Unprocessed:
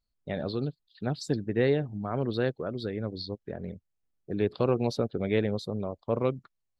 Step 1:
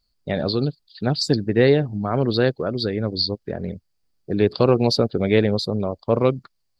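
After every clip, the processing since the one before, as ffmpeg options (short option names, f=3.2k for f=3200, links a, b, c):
-af "equalizer=f=4.7k:t=o:w=0.27:g=13,volume=9dB"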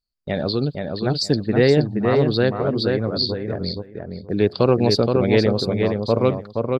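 -filter_complex "[0:a]agate=range=-14dB:threshold=-43dB:ratio=16:detection=peak,asplit=2[a][b];[b]adelay=473,lowpass=f=3.3k:p=1,volume=-4dB,asplit=2[c][d];[d]adelay=473,lowpass=f=3.3k:p=1,volume=0.17,asplit=2[e][f];[f]adelay=473,lowpass=f=3.3k:p=1,volume=0.17[g];[c][e][g]amix=inputs=3:normalize=0[h];[a][h]amix=inputs=2:normalize=0"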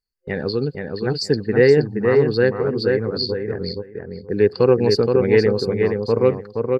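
-af "superequalizer=7b=2:8b=0.398:11b=2:13b=0.251,volume=-2dB"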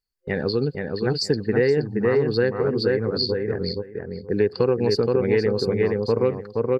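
-af "acompressor=threshold=-16dB:ratio=5"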